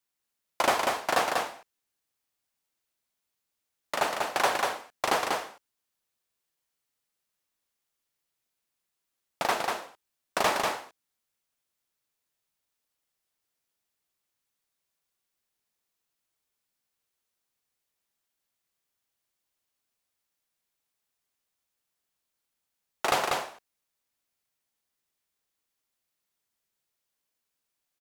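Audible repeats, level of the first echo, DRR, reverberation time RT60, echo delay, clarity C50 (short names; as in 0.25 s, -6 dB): 1, -3.5 dB, none, none, 0.192 s, none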